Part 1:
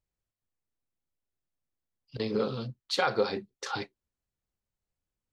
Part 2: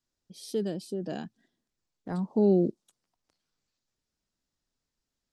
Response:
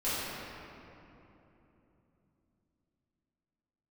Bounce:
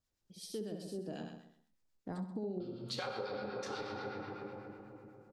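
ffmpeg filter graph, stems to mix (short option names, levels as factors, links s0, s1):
-filter_complex "[0:a]volume=0.596,asplit=3[s0][s1][s2];[s0]atrim=end=1.97,asetpts=PTS-STARTPTS,afade=t=out:st=1.966:d=0.004:c=hsin[s3];[s1]atrim=start=1.97:end=2.6,asetpts=PTS-STARTPTS,volume=0[s4];[s2]atrim=start=2.6,asetpts=PTS-STARTPTS,afade=t=in:d=0.004:c=hsin[s5];[s3][s4][s5]concat=n=3:v=0:a=1,asplit=2[s6][s7];[s7]volume=0.668[s8];[1:a]volume=0.75,asplit=2[s9][s10];[s10]volume=0.562[s11];[2:a]atrim=start_sample=2205[s12];[s8][s12]afir=irnorm=-1:irlink=0[s13];[s11]aecho=0:1:65|130|195|260|325|390|455:1|0.51|0.26|0.133|0.0677|0.0345|0.0176[s14];[s6][s9][s13][s14]amix=inputs=4:normalize=0,acrossover=split=970[s15][s16];[s15]aeval=exprs='val(0)*(1-0.5/2+0.5/2*cos(2*PI*8.1*n/s))':c=same[s17];[s16]aeval=exprs='val(0)*(1-0.5/2-0.5/2*cos(2*PI*8.1*n/s))':c=same[s18];[s17][s18]amix=inputs=2:normalize=0,acompressor=threshold=0.0126:ratio=6"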